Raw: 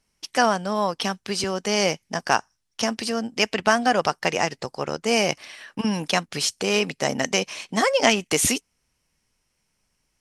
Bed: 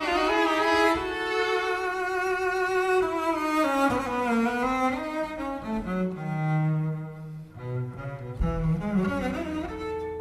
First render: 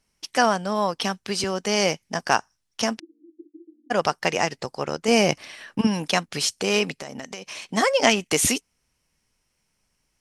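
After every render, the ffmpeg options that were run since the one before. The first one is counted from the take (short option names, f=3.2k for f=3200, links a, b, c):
-filter_complex "[0:a]asplit=3[a][b][c];[a]afade=t=out:st=2.98:d=0.02[d];[b]asuperpass=centerf=320:order=8:qfactor=5.9,afade=t=in:st=2.98:d=0.02,afade=t=out:st=3.9:d=0.02[e];[c]afade=t=in:st=3.9:d=0.02[f];[d][e][f]amix=inputs=3:normalize=0,asettb=1/sr,asplit=3[g][h][i];[g]atrim=end=5.084[j];[h]atrim=start=5.08:end=5.87,asetpts=PTS-STARTPTS,afade=t=in:d=0.004:c=qsin,afade=t=out:st=0.786:d=0.004:c=qsin,lowshelf=f=420:g=6.5[k];[i]atrim=start=5.866[l];[j][k]acrossfade=d=0.004:c1=hsin:c2=qsin[m];[m][l]acrossfade=d=0.004:c1=qsin:c2=hsin,asettb=1/sr,asplit=3[n][o][p];[n]atrim=end=6.924[q];[o]atrim=start=6.92:end=7.68,asetpts=PTS-STARTPTS,afade=t=in:d=0.004:c=qsin,afade=t=out:st=0.756:d=0.004:c=qsin,acompressor=threshold=-31dB:ratio=10:attack=3.2:release=140:knee=1:detection=peak[r];[p]atrim=start=7.676[s];[q][r]acrossfade=d=0.004:c1=hsin:c2=qsin[t];[t][s]acrossfade=d=0.004:c1=qsin:c2=hsin"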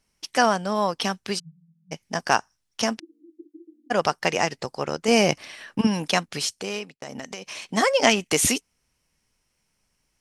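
-filter_complex "[0:a]asplit=3[a][b][c];[a]afade=t=out:st=1.38:d=0.02[d];[b]asuperpass=centerf=160:order=8:qfactor=7.8,afade=t=in:st=1.38:d=0.02,afade=t=out:st=1.91:d=0.02[e];[c]afade=t=in:st=1.91:d=0.02[f];[d][e][f]amix=inputs=3:normalize=0,asplit=2[g][h];[g]atrim=end=7.02,asetpts=PTS-STARTPTS,afade=t=out:st=6.23:d=0.79[i];[h]atrim=start=7.02,asetpts=PTS-STARTPTS,afade=t=in:d=0.004:c=hsin[j];[i][j]concat=n=2:v=0:a=1"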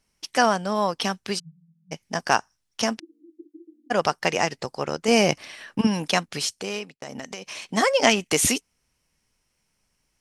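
-af anull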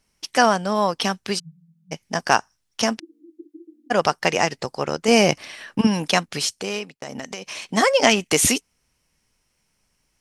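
-af "volume=3dB,alimiter=limit=-1dB:level=0:latency=1"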